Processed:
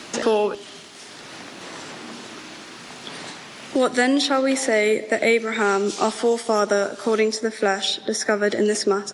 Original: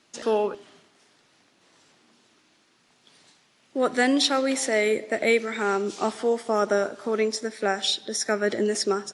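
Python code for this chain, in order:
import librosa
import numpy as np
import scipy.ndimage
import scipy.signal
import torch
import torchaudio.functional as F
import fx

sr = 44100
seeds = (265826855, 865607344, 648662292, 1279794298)

y = fx.band_squash(x, sr, depth_pct=70)
y = y * 10.0 ** (4.0 / 20.0)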